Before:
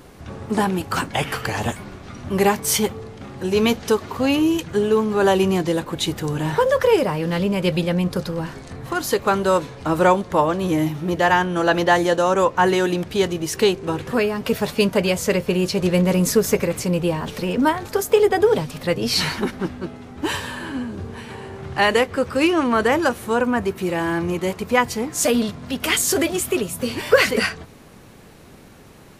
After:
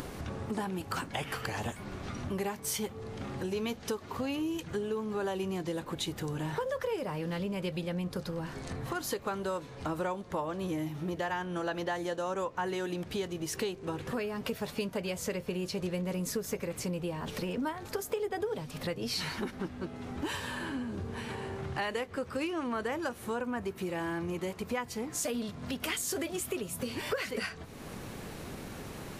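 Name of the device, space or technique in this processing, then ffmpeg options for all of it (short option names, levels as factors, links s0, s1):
upward and downward compression: -af "acompressor=mode=upward:threshold=0.0708:ratio=2.5,acompressor=threshold=0.0631:ratio=4,volume=0.398"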